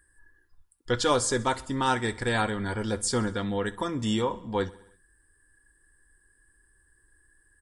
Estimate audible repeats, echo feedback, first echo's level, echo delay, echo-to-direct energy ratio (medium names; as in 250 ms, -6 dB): 4, 59%, -20.0 dB, 65 ms, -18.0 dB